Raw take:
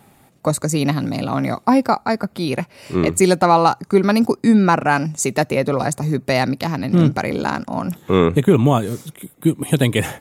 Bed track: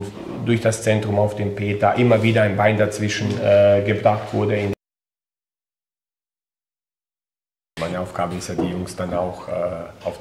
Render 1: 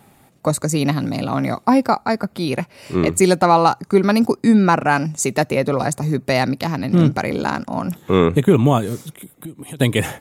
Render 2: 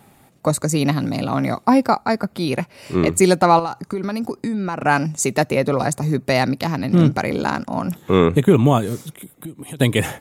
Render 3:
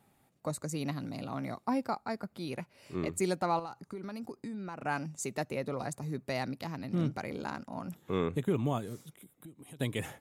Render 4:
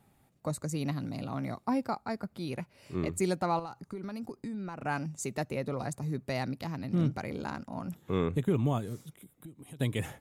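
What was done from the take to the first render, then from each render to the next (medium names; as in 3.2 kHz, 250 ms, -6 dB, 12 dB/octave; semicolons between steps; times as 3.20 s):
9.14–9.80 s: compression 4:1, threshold -32 dBFS
3.59–4.81 s: compression 8:1, threshold -20 dBFS
trim -17 dB
bass shelf 130 Hz +9 dB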